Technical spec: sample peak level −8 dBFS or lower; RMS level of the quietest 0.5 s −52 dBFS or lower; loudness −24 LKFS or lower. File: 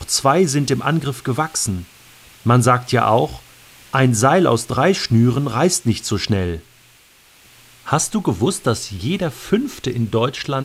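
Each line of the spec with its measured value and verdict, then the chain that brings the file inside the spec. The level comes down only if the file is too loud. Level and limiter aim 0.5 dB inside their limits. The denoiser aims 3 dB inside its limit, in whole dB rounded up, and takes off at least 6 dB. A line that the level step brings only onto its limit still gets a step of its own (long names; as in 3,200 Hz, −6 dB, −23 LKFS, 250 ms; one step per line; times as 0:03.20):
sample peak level −2.5 dBFS: out of spec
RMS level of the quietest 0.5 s −50 dBFS: out of spec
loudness −18.0 LKFS: out of spec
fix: level −6.5 dB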